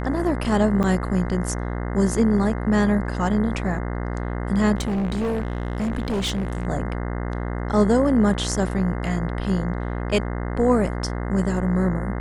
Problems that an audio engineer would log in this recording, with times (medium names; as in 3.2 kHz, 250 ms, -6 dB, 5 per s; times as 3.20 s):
buzz 60 Hz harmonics 35 -27 dBFS
0.83–0.84 s: dropout 7.3 ms
4.75–6.67 s: clipped -20.5 dBFS